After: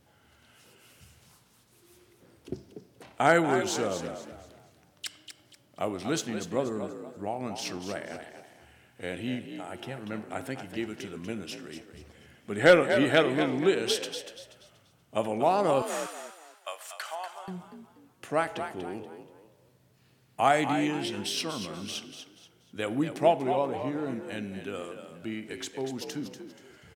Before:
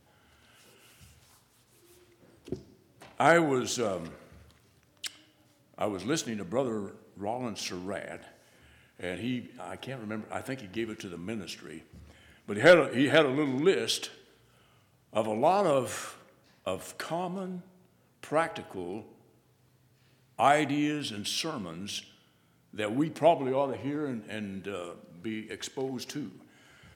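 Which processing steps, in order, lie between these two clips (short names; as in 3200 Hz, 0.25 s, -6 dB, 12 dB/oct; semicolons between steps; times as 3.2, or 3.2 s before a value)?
15.82–17.48 HPF 720 Hz 24 dB/oct; frequency-shifting echo 0.24 s, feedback 32%, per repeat +52 Hz, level -9 dB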